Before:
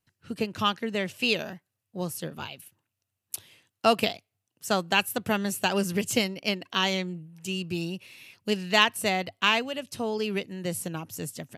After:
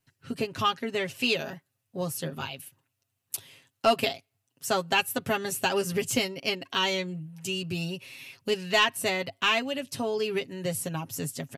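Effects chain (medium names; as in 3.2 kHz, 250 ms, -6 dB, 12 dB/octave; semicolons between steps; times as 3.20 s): comb 7.4 ms, depth 70%; in parallel at -1 dB: compression, threshold -34 dBFS, peak gain reduction 19.5 dB; on the sum: saturation -7 dBFS, distortion -22 dB; trim -3.5 dB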